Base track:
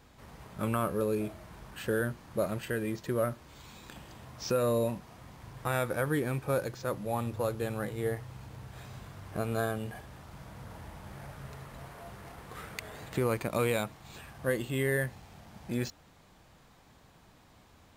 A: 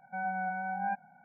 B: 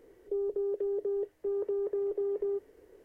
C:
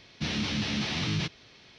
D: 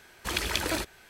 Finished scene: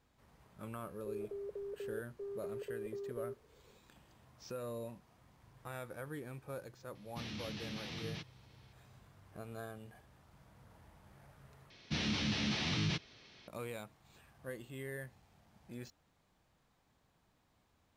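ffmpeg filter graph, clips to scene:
ffmpeg -i bed.wav -i cue0.wav -i cue1.wav -i cue2.wav -filter_complex "[3:a]asplit=2[link_01][link_02];[0:a]volume=-15dB[link_03];[2:a]aecho=1:1:1.8:0.75[link_04];[link_03]asplit=2[link_05][link_06];[link_05]atrim=end=11.704[link_07];[link_02]atrim=end=1.78,asetpts=PTS-STARTPTS,volume=-5dB[link_08];[link_06]atrim=start=13.476[link_09];[link_04]atrim=end=3.04,asetpts=PTS-STARTPTS,volume=-13dB,afade=type=in:duration=0.004:curve=hsin,afade=type=out:start_time=3.036:duration=0.004:curve=hsin,adelay=750[link_10];[link_01]atrim=end=1.78,asetpts=PTS-STARTPTS,volume=-14.5dB,afade=type=in:duration=0.004:curve=hsin,afade=type=out:start_time=1.776:duration=0.004:curve=hsin,adelay=6950[link_11];[link_07][link_08]acrossfade=duration=0.004:curve1=hsin:curve2=hsin[link_12];[link_12][link_09]acrossfade=duration=0.004:curve1=hsin:curve2=hsin[link_13];[link_13][link_10][link_11]amix=inputs=3:normalize=0" out.wav

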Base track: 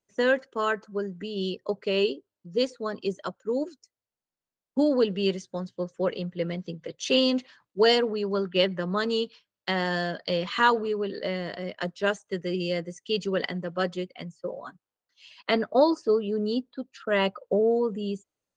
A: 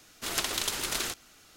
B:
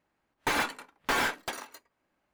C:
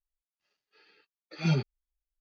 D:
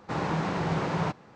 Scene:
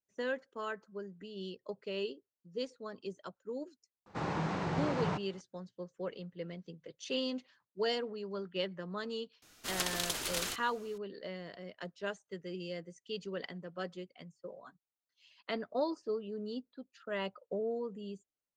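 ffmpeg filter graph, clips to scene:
ffmpeg -i bed.wav -i cue0.wav -i cue1.wav -i cue2.wav -i cue3.wav -filter_complex "[0:a]volume=-13dB[link_01];[4:a]atrim=end=1.35,asetpts=PTS-STARTPTS,volume=-6dB,afade=type=in:duration=0.004:curve=hsin,afade=type=out:start_time=1.346:duration=0.004:curve=hsin,adelay=4060[link_02];[1:a]atrim=end=1.56,asetpts=PTS-STARTPTS,volume=-5dB,afade=type=in:duration=0.004:curve=hsin,afade=type=out:start_time=1.556:duration=0.004:curve=hsin,adelay=9420[link_03];[link_01][link_02][link_03]amix=inputs=3:normalize=0" out.wav

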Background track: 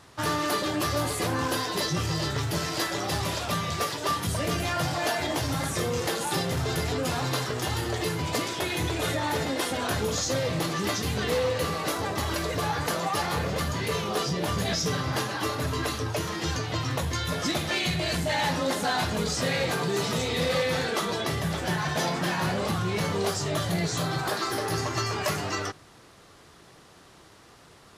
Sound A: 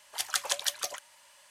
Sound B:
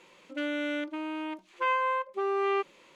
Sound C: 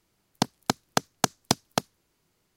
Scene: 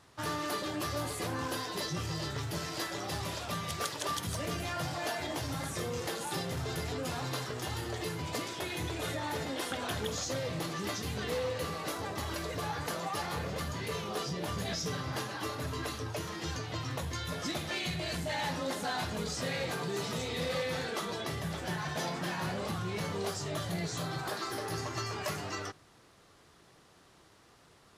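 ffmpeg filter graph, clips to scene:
ffmpeg -i bed.wav -i cue0.wav -filter_complex "[1:a]asplit=2[link_01][link_02];[0:a]volume=-8dB[link_03];[link_02]aresample=8000,aresample=44100[link_04];[link_01]atrim=end=1.5,asetpts=PTS-STARTPTS,volume=-10dB,afade=type=in:duration=0.004:curve=hsin,afade=type=out:start_time=1.496:duration=0.004:curve=hsin,adelay=3500[link_05];[link_04]atrim=end=1.5,asetpts=PTS-STARTPTS,volume=-8.5dB,afade=type=in:duration=0.004:curve=hsin,afade=type=out:start_time=1.496:duration=0.004:curve=hsin,adelay=413658S[link_06];[link_03][link_05][link_06]amix=inputs=3:normalize=0" out.wav

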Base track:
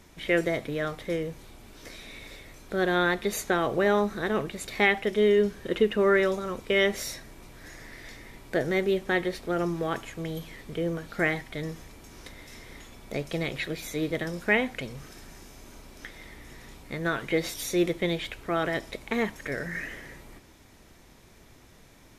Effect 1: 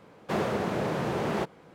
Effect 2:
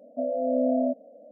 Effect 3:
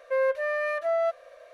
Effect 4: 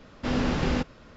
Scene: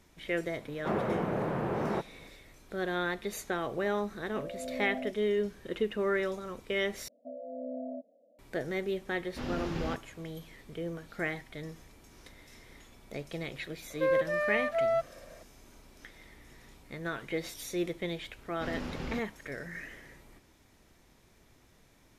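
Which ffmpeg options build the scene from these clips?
ffmpeg -i bed.wav -i cue0.wav -i cue1.wav -i cue2.wav -i cue3.wav -filter_complex "[2:a]asplit=2[link_01][link_02];[4:a]asplit=2[link_03][link_04];[0:a]volume=-8dB[link_05];[1:a]lowpass=1900[link_06];[link_05]asplit=2[link_07][link_08];[link_07]atrim=end=7.084[link_09];[link_02]atrim=end=1.31,asetpts=PTS-STARTPTS,volume=-15dB[link_10];[link_08]atrim=start=8.386[link_11];[link_06]atrim=end=1.74,asetpts=PTS-STARTPTS,volume=-2.5dB,afade=type=in:duration=0.004:curve=hsin,afade=type=out:start_time=1.736:duration=0.004:curve=hsin,adelay=560[link_12];[link_01]atrim=end=1.31,asetpts=PTS-STARTPTS,volume=-13.5dB,afade=type=in:duration=0.004:curve=hsin,afade=type=out:start_time=1.306:duration=0.004:curve=hsin,adelay=4180[link_13];[link_03]atrim=end=1.16,asetpts=PTS-STARTPTS,volume=-10.5dB,afade=type=in:duration=0.004:curve=hsin,afade=type=out:start_time=1.156:duration=0.004:curve=hsin,adelay=9130[link_14];[3:a]atrim=end=1.53,asetpts=PTS-STARTPTS,volume=-2.5dB,afade=type=in:duration=0.004:curve=hsin,afade=type=out:start_time=1.526:duration=0.004:curve=hsin,adelay=13900[link_15];[link_04]atrim=end=1.16,asetpts=PTS-STARTPTS,volume=-12.5dB,afade=type=in:duration=0.004:curve=hsin,afade=type=out:start_time=1.156:duration=0.004:curve=hsin,adelay=18370[link_16];[link_09][link_10]acrossfade=duration=0.004:curve1=hsin:curve2=hsin[link_17];[link_17][link_11]acrossfade=duration=0.004:curve1=hsin:curve2=hsin[link_18];[link_18][link_12][link_13][link_14][link_15][link_16]amix=inputs=6:normalize=0" out.wav

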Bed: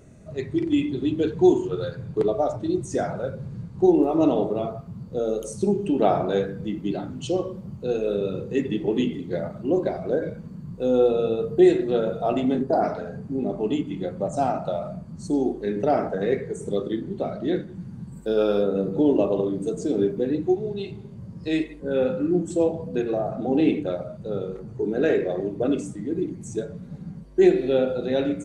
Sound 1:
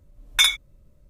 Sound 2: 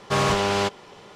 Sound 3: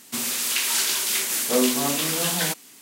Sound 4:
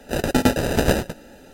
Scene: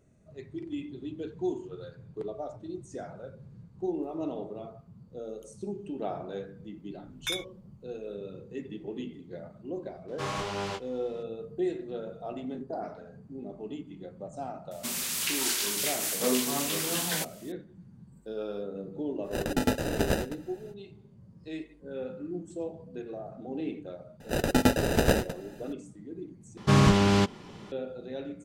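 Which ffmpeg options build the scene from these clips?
ffmpeg -i bed.wav -i cue0.wav -i cue1.wav -i cue2.wav -i cue3.wav -filter_complex "[2:a]asplit=2[link_01][link_02];[4:a]asplit=2[link_03][link_04];[0:a]volume=-14.5dB[link_05];[link_01]flanger=delay=20:depth=3.9:speed=1.9[link_06];[link_02]lowshelf=frequency=360:width_type=q:width=1.5:gain=9[link_07];[link_05]asplit=2[link_08][link_09];[link_08]atrim=end=26.574[link_10];[link_07]atrim=end=1.15,asetpts=PTS-STARTPTS,volume=-3.5dB[link_11];[link_09]atrim=start=27.716[link_12];[1:a]atrim=end=1.09,asetpts=PTS-STARTPTS,volume=-15.5dB,afade=type=in:duration=0.004:curve=hsin,afade=type=out:start_time=1.086:duration=0.004:curve=hsin,adelay=6880[link_13];[link_06]atrim=end=1.15,asetpts=PTS-STARTPTS,volume=-9dB,afade=type=in:duration=0.004:curve=hsin,afade=type=out:start_time=1.146:duration=0.004:curve=hsin,adelay=10080[link_14];[3:a]atrim=end=2.81,asetpts=PTS-STARTPTS,volume=-6.5dB,afade=type=in:duration=0.004:curve=hsin,afade=type=out:start_time=2.806:duration=0.004:curve=hsin,adelay=14710[link_15];[link_03]atrim=end=1.53,asetpts=PTS-STARTPTS,volume=-9dB,afade=type=in:duration=0.05,afade=type=out:start_time=1.48:duration=0.05,adelay=19220[link_16];[link_04]atrim=end=1.53,asetpts=PTS-STARTPTS,volume=-5dB,afade=type=in:duration=0.004:curve=hsin,afade=type=out:start_time=1.526:duration=0.004:curve=hsin,adelay=24200[link_17];[link_10][link_11]acrossfade=duration=0.004:curve1=hsin:curve2=hsin[link_18];[link_18][link_12]acrossfade=duration=0.004:curve1=hsin:curve2=hsin[link_19];[link_19][link_13][link_14][link_15][link_16][link_17]amix=inputs=6:normalize=0" out.wav

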